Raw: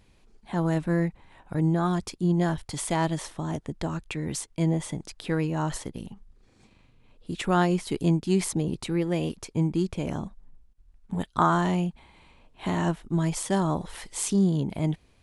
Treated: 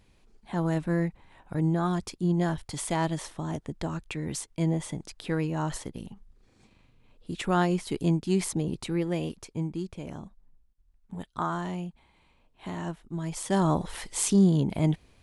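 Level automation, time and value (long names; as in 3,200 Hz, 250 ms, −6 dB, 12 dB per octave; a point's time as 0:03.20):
0:09.06 −2 dB
0:09.88 −8.5 dB
0:13.21 −8.5 dB
0:13.65 +2 dB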